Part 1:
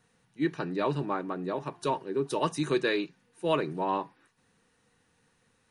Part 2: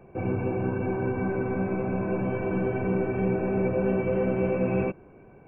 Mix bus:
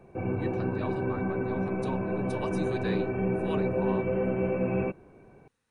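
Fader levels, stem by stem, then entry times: -9.5, -2.5 dB; 0.00, 0.00 s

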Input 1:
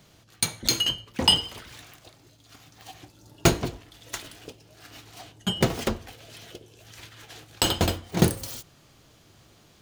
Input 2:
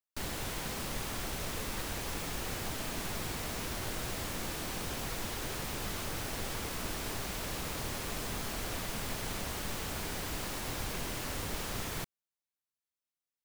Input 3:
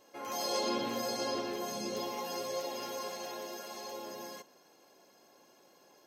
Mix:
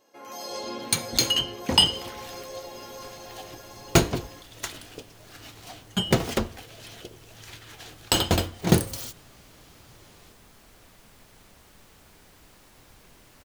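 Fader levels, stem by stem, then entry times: +1.0, -16.5, -2.0 dB; 0.50, 2.10, 0.00 s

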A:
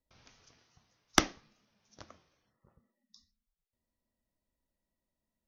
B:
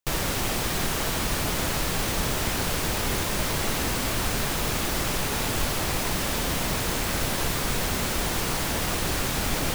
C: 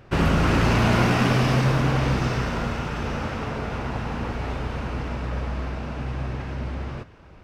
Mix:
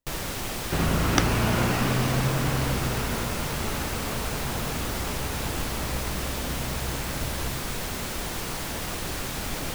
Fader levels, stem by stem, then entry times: 0.0, -5.0, -5.0 dB; 0.00, 0.00, 0.60 s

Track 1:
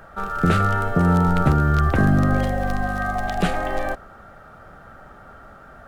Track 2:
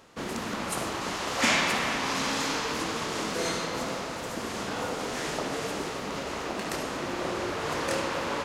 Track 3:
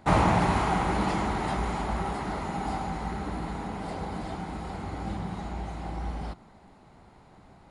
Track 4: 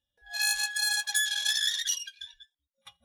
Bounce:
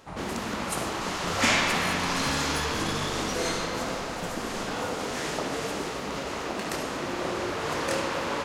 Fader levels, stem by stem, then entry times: -19.0, +1.0, -18.0, -12.0 dB; 0.80, 0.00, 0.00, 1.40 s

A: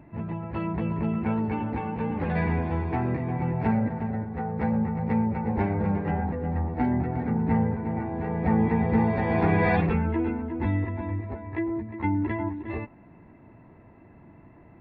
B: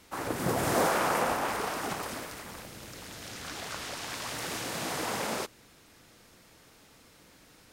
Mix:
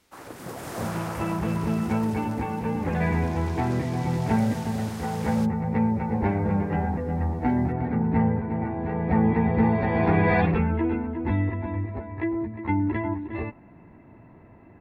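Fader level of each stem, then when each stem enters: +1.5, -8.0 dB; 0.65, 0.00 s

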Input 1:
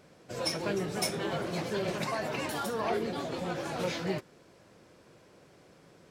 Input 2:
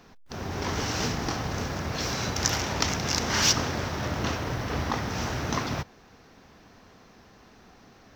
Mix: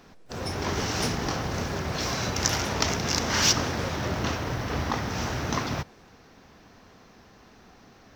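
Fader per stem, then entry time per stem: -5.5, +0.5 dB; 0.00, 0.00 s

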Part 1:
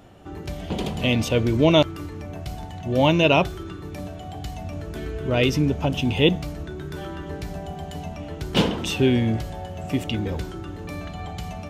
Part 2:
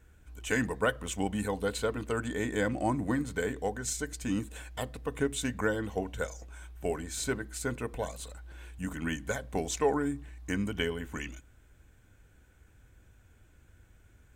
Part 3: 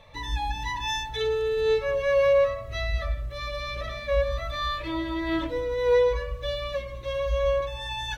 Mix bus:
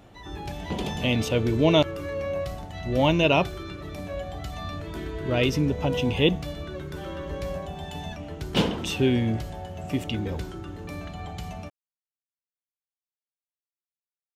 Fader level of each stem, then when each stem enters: -3.0 dB, off, -10.5 dB; 0.00 s, off, 0.00 s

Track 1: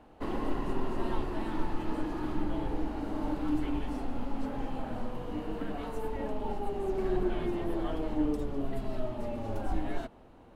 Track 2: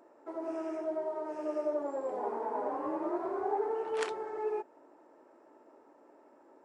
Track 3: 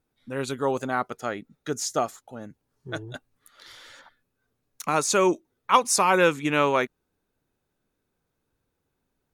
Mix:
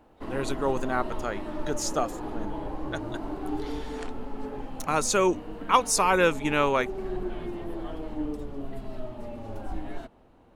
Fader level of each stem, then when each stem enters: -2.5, -6.0, -2.0 dB; 0.00, 0.00, 0.00 s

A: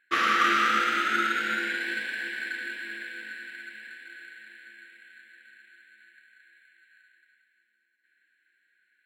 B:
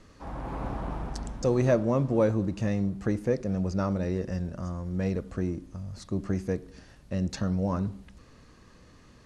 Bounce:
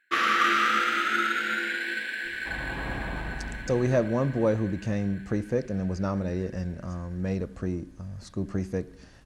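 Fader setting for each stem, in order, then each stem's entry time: 0.0, -0.5 dB; 0.00, 2.25 s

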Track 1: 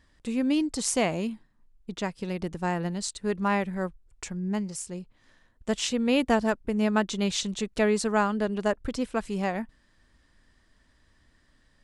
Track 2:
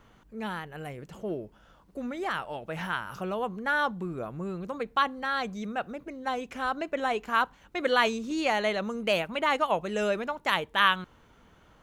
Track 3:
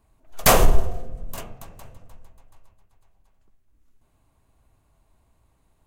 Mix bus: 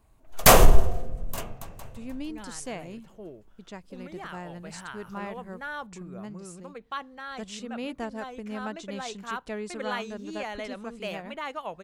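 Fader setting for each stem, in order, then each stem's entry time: -11.5, -9.5, +1.0 dB; 1.70, 1.95, 0.00 s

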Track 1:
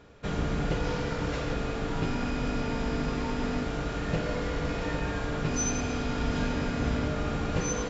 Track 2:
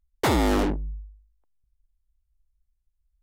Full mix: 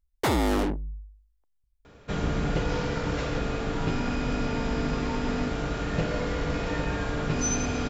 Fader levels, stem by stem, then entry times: +2.0, -2.5 dB; 1.85, 0.00 s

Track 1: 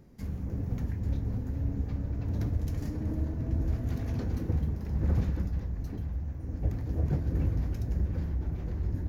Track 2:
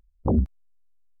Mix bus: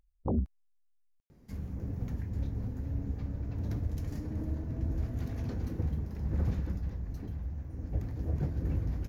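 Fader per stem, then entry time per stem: -3.5, -8.5 dB; 1.30, 0.00 s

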